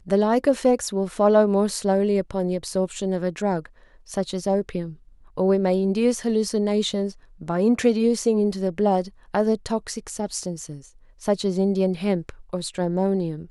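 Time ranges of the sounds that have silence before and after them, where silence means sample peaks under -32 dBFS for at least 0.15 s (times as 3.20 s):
4.10–4.92 s
5.38–7.12 s
7.42–9.08 s
9.35–10.77 s
11.23–12.30 s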